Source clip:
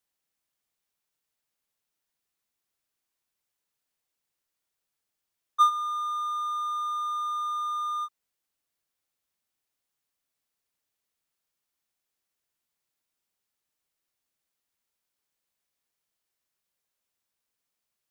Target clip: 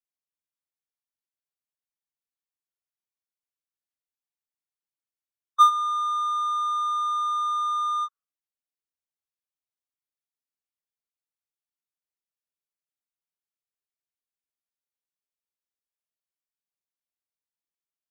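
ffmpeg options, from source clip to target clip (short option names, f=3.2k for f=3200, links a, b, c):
-af "afftdn=nr=20:nf=-50,volume=4.5dB"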